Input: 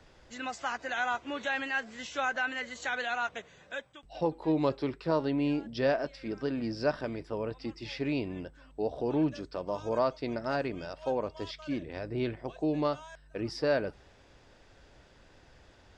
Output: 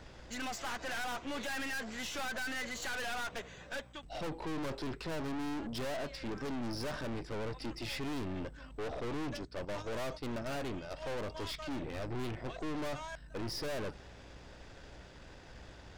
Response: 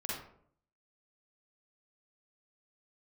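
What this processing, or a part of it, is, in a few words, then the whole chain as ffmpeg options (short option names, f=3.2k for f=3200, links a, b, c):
valve amplifier with mains hum: -filter_complex "[0:a]asplit=3[a][b][c];[a]afade=t=out:st=8.99:d=0.02[d];[b]agate=range=-9dB:threshold=-37dB:ratio=16:detection=peak,afade=t=in:st=8.99:d=0.02,afade=t=out:st=10.9:d=0.02[e];[c]afade=t=in:st=10.9:d=0.02[f];[d][e][f]amix=inputs=3:normalize=0,aeval=exprs='(tanh(158*val(0)+0.5)-tanh(0.5))/158':c=same,aeval=exprs='val(0)+0.000562*(sin(2*PI*60*n/s)+sin(2*PI*2*60*n/s)/2+sin(2*PI*3*60*n/s)/3+sin(2*PI*4*60*n/s)/4+sin(2*PI*5*60*n/s)/5)':c=same,volume=7dB"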